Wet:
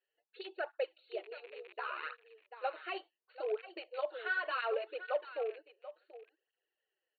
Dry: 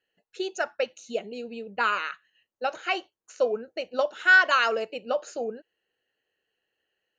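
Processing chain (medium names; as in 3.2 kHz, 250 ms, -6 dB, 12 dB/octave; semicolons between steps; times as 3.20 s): rattle on loud lows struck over -46 dBFS, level -30 dBFS; peak limiter -18 dBFS, peak gain reduction 9.5 dB; on a send: delay 736 ms -14 dB; 1.46–2.03 s: on the sum: ring modulator 35 Hz; brick-wall FIR band-pass 310–4500 Hz; treble shelf 3.4 kHz -7 dB; cancelling through-zero flanger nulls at 0.69 Hz, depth 6.7 ms; trim -5 dB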